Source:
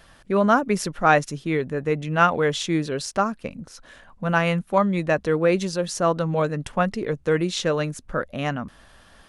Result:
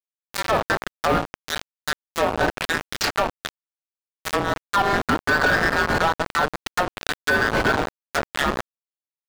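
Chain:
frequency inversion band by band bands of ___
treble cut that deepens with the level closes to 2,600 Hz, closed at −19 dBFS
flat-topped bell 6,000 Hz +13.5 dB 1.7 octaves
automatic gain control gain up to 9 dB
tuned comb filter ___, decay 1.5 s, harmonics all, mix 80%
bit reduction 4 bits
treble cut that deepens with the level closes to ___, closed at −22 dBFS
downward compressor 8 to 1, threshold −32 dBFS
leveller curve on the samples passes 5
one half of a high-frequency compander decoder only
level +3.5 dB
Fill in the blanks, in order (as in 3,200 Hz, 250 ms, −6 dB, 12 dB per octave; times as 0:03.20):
2,000 Hz, 56 Hz, 900 Hz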